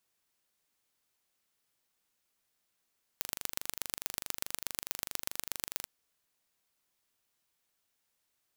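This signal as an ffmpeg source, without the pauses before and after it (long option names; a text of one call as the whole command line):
ffmpeg -f lavfi -i "aevalsrc='0.562*eq(mod(n,1785),0)*(0.5+0.5*eq(mod(n,5355),0))':duration=2.66:sample_rate=44100" out.wav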